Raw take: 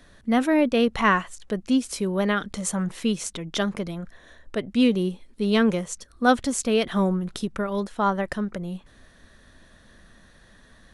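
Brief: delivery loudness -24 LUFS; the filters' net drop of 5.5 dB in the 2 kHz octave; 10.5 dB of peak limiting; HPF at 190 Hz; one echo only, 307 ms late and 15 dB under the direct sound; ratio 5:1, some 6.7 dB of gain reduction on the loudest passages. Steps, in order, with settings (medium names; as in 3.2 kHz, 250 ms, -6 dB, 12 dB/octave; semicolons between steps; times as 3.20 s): high-pass 190 Hz; peaking EQ 2 kHz -7.5 dB; compression 5:1, threshold -22 dBFS; peak limiter -23 dBFS; delay 307 ms -15 dB; trim +9 dB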